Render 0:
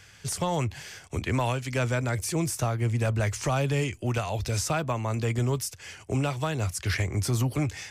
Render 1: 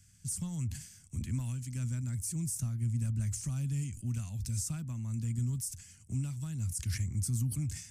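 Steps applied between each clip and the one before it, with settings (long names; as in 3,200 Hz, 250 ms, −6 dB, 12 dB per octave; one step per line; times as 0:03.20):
drawn EQ curve 230 Hz 0 dB, 430 Hz −27 dB, 670 Hz −27 dB, 1,400 Hz −19 dB, 3,700 Hz −15 dB, 8,600 Hz +4 dB, 12,000 Hz −1 dB
level that may fall only so fast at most 95 dB per second
level −5.5 dB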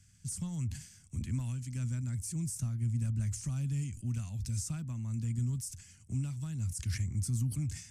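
high-shelf EQ 12,000 Hz −12 dB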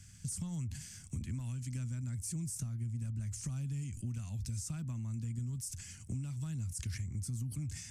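downward compressor 5 to 1, threshold −45 dBFS, peak gain reduction 14.5 dB
level +7.5 dB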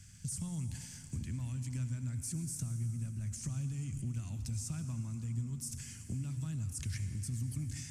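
convolution reverb RT60 3.3 s, pre-delay 63 ms, DRR 8.5 dB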